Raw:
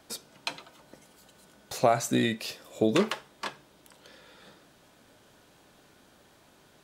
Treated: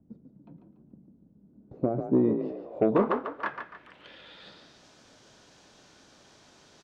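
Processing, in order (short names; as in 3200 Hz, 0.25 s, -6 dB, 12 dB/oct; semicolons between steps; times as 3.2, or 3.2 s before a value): low-pass sweep 200 Hz -> 5900 Hz, 1.4–4.81; added harmonics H 5 -25 dB, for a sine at -8 dBFS; frequency-shifting echo 0.144 s, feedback 38%, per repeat +37 Hz, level -7.5 dB; gain -2 dB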